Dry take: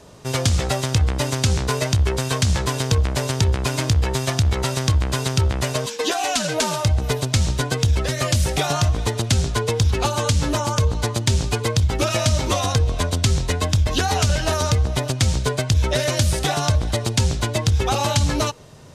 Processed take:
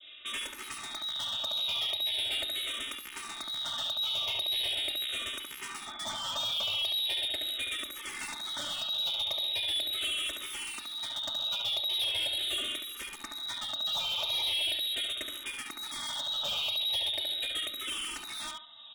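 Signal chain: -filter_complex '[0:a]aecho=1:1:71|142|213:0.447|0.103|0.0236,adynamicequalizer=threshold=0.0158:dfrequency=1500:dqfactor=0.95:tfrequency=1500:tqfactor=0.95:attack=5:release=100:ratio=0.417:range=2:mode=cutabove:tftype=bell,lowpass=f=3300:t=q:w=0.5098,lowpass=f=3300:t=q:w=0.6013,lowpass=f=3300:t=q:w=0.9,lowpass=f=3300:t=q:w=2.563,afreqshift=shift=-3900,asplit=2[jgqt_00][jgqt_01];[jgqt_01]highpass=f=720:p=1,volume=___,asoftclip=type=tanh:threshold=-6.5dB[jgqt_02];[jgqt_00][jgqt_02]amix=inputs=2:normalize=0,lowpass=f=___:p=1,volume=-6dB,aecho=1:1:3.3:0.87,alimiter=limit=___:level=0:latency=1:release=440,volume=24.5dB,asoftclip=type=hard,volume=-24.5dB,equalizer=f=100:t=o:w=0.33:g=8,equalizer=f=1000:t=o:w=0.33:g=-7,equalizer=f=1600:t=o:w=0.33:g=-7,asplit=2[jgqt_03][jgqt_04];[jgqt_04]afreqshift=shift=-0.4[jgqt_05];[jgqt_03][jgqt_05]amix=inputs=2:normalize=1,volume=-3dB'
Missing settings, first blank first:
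10dB, 1800, -12.5dB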